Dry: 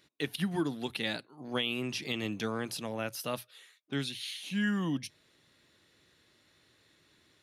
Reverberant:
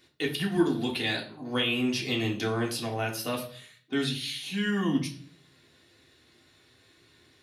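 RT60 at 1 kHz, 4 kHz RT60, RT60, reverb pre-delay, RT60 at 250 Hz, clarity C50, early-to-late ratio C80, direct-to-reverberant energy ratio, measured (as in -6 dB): 0.45 s, 0.40 s, 0.50 s, 3 ms, 0.70 s, 10.0 dB, 14.5 dB, -2.0 dB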